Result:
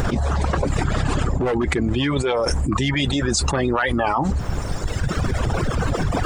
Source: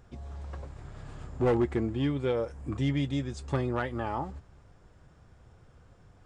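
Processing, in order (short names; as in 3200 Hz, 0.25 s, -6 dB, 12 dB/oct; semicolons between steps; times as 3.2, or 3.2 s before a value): reverb removal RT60 1.7 s; harmonic-percussive split harmonic -13 dB; fast leveller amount 100%; gain +7.5 dB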